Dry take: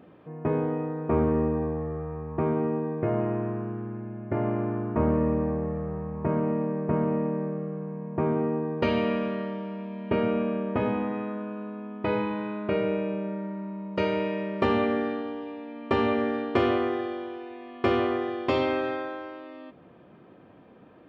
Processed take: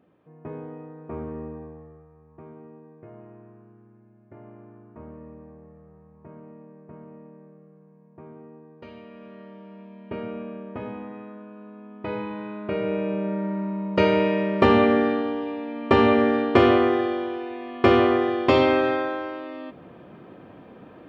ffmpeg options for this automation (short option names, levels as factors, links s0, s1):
-af "volume=5.96,afade=t=out:st=1.51:d=0.58:silence=0.375837,afade=t=in:st=9.11:d=0.69:silence=0.281838,afade=t=in:st=11.51:d=1.26:silence=0.446684,afade=t=in:st=12.77:d=0.79:silence=0.398107"